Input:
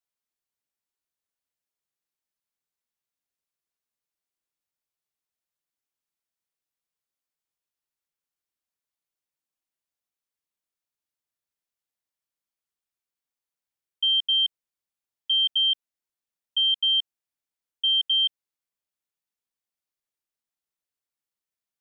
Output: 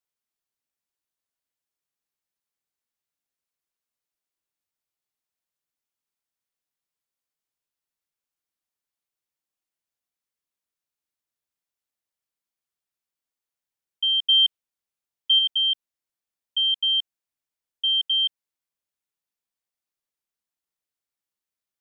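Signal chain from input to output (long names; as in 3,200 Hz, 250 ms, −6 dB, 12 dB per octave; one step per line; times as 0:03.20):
0:14.25–0:15.39: dynamic equaliser 3,000 Hz, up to +5 dB, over −34 dBFS, Q 2.4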